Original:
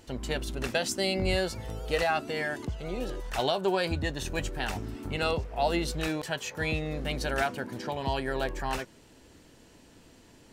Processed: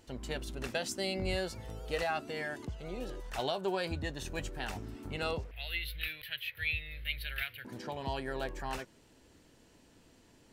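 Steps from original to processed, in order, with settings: 5.51–7.65 s: FFT filter 110 Hz 0 dB, 200 Hz -28 dB, 490 Hz -18 dB, 910 Hz -24 dB, 2.1 kHz +8 dB, 3.8 kHz +5 dB, 7 kHz -30 dB, 12 kHz +11 dB; trim -6.5 dB

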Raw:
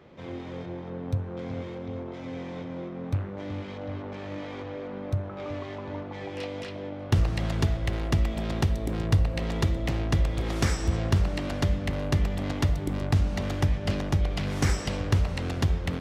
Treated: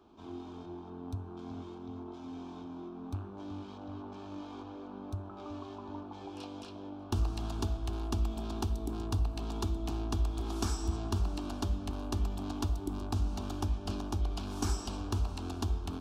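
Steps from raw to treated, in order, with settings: static phaser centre 530 Hz, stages 6; trim -4 dB

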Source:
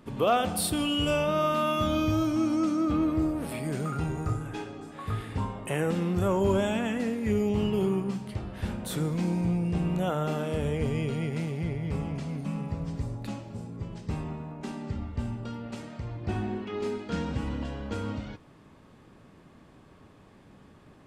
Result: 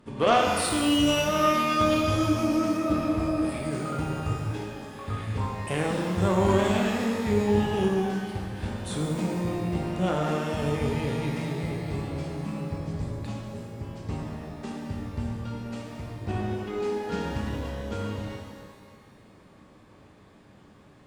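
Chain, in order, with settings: resampled via 22.05 kHz; Chebyshev shaper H 3 -16 dB, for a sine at -13.5 dBFS; pitch-shifted reverb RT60 1.6 s, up +12 st, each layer -8 dB, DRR 0.5 dB; trim +3.5 dB

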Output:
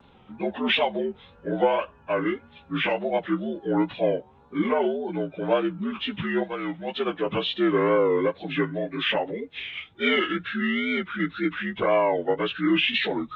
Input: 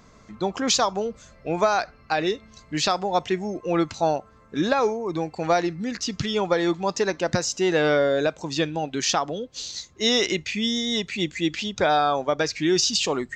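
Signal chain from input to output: frequency axis rescaled in octaves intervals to 80%; 6.42–7.06 s: peaking EQ 400 Hz -12.5 dB -> -3.5 dB 2.6 oct; wow and flutter 100 cents

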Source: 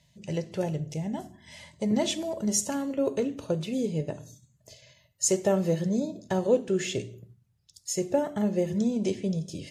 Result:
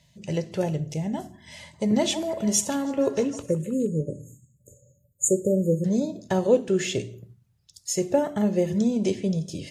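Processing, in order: 3.42–5.85 s: spectral selection erased 590–6500 Hz; 1.58–3.87 s: repeats whose band climbs or falls 157 ms, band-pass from 910 Hz, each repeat 0.7 oct, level -7.5 dB; trim +3.5 dB

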